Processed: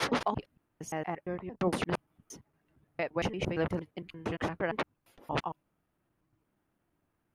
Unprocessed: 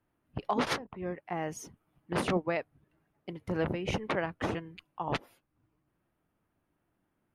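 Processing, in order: slices played last to first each 115 ms, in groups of 7

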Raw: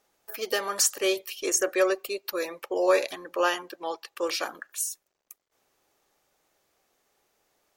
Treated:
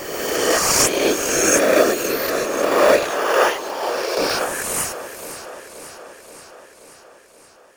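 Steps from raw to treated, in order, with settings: reverse spectral sustain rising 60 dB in 1.82 s; in parallel at -4.5 dB: sample-and-hold 11×; on the sum: whisper effect; 3.10–4.18 s: brick-wall FIR high-pass 330 Hz; modulated delay 528 ms, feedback 65%, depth 62 cents, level -13 dB; trim +1.5 dB

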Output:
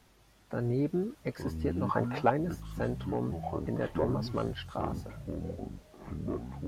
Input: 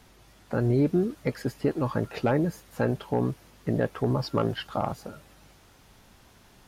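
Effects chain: 1.89–2.30 s: peaking EQ 960 Hz +14 dB 1.6 oct; ever faster or slower copies 599 ms, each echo -7 st, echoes 3, each echo -6 dB; trim -7 dB

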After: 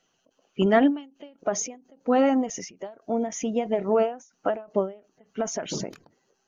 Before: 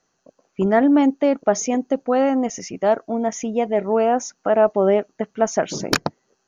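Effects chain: coarse spectral quantiser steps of 15 dB; peaking EQ 3 kHz +15 dB 0.38 oct, from 1.39 s +4 dB; endings held to a fixed fall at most 160 dB/s; trim -2 dB

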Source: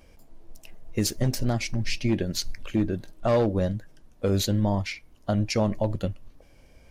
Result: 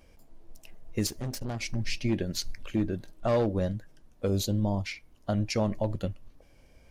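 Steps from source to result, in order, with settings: 1.07–1.62 s: valve stage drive 26 dB, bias 0.4; 4.27–4.85 s: peaking EQ 1.8 kHz -13 dB 0.95 oct; trim -3.5 dB

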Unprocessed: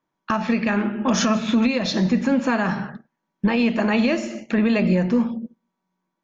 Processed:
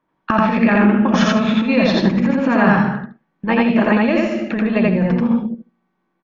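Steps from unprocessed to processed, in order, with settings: low-pass 2.7 kHz 12 dB/octave; compressor with a negative ratio -21 dBFS, ratio -0.5; loudspeakers at several distances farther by 29 m 0 dB, 54 m -11 dB; trim +4.5 dB

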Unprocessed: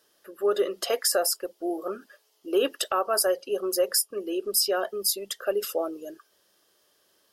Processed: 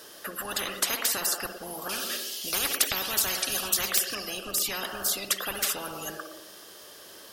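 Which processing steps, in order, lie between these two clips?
1.89–4.15 s: resonant high shelf 2 kHz +13.5 dB, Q 1.5; reverberation, pre-delay 57 ms, DRR 14 dB; spectrum-flattening compressor 10:1; trim -4.5 dB

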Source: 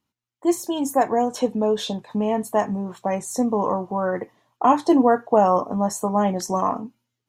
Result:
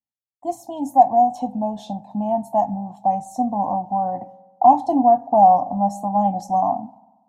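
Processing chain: gate with hold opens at -43 dBFS; FFT filter 290 Hz 0 dB, 420 Hz -26 dB, 750 Hz +13 dB, 1.4 kHz -25 dB, 2.8 kHz -14 dB, 5.2 kHz -11 dB; on a send: reverberation RT60 1.2 s, pre-delay 3 ms, DRR 17.5 dB; on the sum: trim -1.5 dB

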